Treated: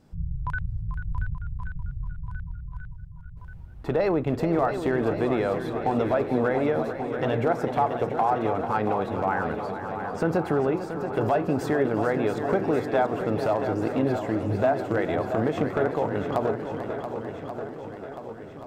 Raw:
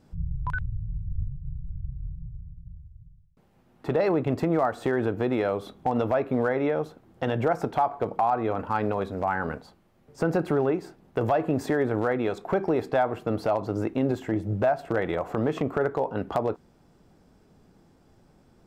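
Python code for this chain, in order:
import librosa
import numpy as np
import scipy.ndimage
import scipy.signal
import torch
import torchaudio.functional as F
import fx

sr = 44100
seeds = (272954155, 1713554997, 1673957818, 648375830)

y = fx.echo_swing(x, sr, ms=1133, ratio=1.5, feedback_pct=52, wet_db=-9)
y = fx.echo_warbled(y, sr, ms=442, feedback_pct=51, rate_hz=2.8, cents=72, wet_db=-11.5)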